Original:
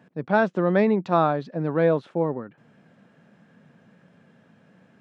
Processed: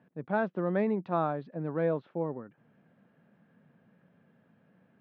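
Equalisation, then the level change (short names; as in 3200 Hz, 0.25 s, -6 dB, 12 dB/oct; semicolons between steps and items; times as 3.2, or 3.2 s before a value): air absorption 290 m; -8.0 dB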